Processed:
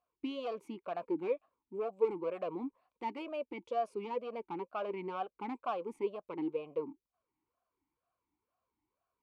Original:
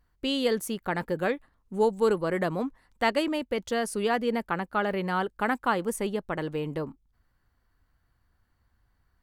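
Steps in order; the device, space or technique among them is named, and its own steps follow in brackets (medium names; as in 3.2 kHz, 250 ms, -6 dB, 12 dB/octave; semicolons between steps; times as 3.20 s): talk box (valve stage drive 23 dB, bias 0.3; talking filter a-u 2.1 Hz); trim +3.5 dB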